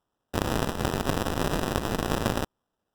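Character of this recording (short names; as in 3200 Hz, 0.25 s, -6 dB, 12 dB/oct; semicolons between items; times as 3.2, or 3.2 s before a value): aliases and images of a low sample rate 2200 Hz, jitter 0%; MP3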